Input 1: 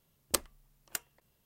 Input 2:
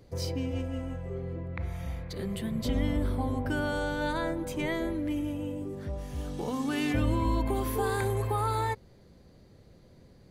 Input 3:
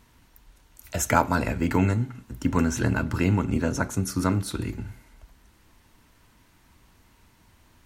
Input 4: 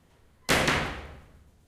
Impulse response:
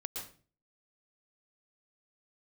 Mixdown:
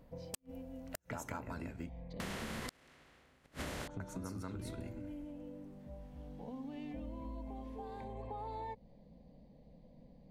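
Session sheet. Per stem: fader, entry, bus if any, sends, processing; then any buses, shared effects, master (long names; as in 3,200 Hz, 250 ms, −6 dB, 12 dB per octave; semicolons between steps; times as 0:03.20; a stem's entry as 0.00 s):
−10.5 dB, 0.00 s, bus A, no send, no echo send, no processing
+1.0 dB, 0.00 s, bus B, no send, no echo send, phaser with its sweep stopped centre 370 Hz, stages 6; automatic ducking −10 dB, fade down 0.30 s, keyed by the third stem
−7.5 dB, 0.00 s, muted 0:01.71–0:03.81, bus B, no send, echo send −9 dB, no processing
−4.5 dB, 2.20 s, bus A, no send, no echo send, compressor on every frequency bin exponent 0.4
bus A: 0.0 dB, automatic gain control gain up to 6 dB; brickwall limiter −15 dBFS, peak gain reduction 8 dB
bus B: 0.0 dB, head-to-tape spacing loss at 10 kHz 34 dB; downward compressor 2 to 1, threshold −41 dBFS, peak gain reduction 9.5 dB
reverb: not used
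echo: single-tap delay 187 ms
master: gate with flip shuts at −20 dBFS, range −39 dB; downward compressor 6 to 1, threshold −39 dBFS, peak gain reduction 9.5 dB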